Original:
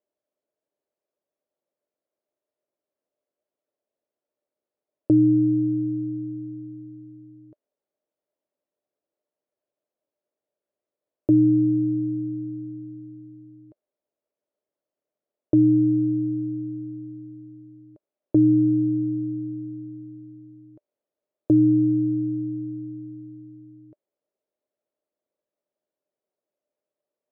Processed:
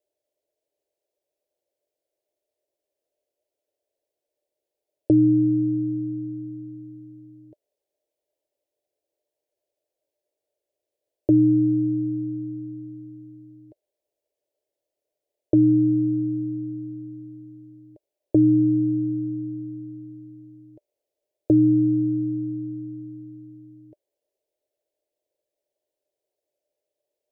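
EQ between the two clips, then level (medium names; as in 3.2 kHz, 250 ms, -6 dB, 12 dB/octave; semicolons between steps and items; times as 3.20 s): static phaser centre 510 Hz, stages 4; +5.0 dB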